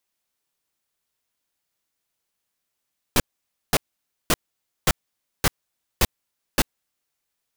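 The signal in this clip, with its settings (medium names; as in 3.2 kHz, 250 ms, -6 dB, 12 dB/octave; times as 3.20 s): noise bursts pink, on 0.04 s, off 0.53 s, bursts 7, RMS -17 dBFS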